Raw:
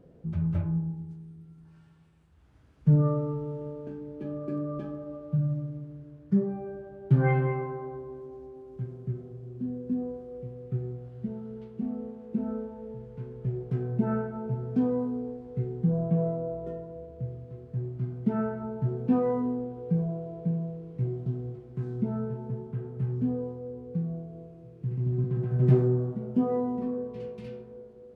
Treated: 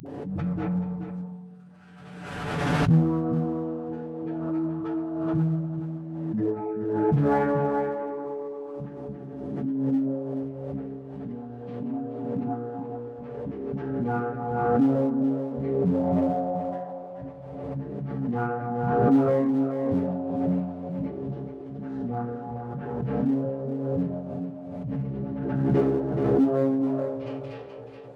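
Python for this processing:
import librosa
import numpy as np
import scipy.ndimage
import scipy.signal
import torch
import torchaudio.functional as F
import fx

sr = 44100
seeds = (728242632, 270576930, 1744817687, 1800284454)

p1 = fx.pitch_keep_formants(x, sr, semitones=-10.5)
p2 = fx.lowpass(p1, sr, hz=1100.0, slope=6)
p3 = fx.hum_notches(p2, sr, base_hz=50, count=8)
p4 = p3 + 0.7 * np.pad(p3, (int(6.9 * sr / 1000.0), 0))[:len(p3)]
p5 = fx.dispersion(p4, sr, late='highs', ms=63.0, hz=350.0)
p6 = np.clip(p5, -10.0 ** (-24.5 / 20.0), 10.0 ** (-24.5 / 20.0))
p7 = p5 + (p6 * 10.0 ** (-11.0 / 20.0))
p8 = scipy.signal.sosfilt(scipy.signal.butter(2, 110.0, 'highpass', fs=sr, output='sos'), p7)
p9 = fx.tilt_eq(p8, sr, slope=2.5)
p10 = p9 + 10.0 ** (-8.0 / 20.0) * np.pad(p9, (int(426 * sr / 1000.0), 0))[:len(p9)]
p11 = fx.pre_swell(p10, sr, db_per_s=32.0)
y = p11 * 10.0 ** (5.5 / 20.0)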